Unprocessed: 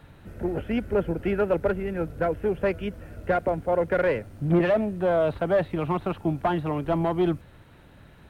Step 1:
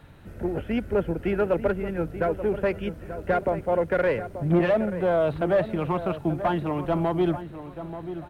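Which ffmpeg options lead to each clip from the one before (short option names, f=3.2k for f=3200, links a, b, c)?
-filter_complex "[0:a]asplit=2[a][b];[b]adelay=884,lowpass=f=1.8k:p=1,volume=-11dB,asplit=2[c][d];[d]adelay=884,lowpass=f=1.8k:p=1,volume=0.34,asplit=2[e][f];[f]adelay=884,lowpass=f=1.8k:p=1,volume=0.34,asplit=2[g][h];[h]adelay=884,lowpass=f=1.8k:p=1,volume=0.34[i];[a][c][e][g][i]amix=inputs=5:normalize=0"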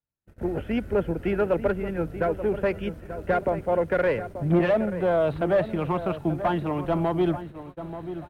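-af "agate=range=-45dB:threshold=-38dB:ratio=16:detection=peak"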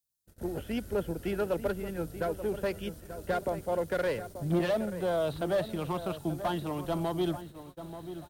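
-af "aexciter=amount=4:drive=7.8:freq=3.4k,volume=-7dB"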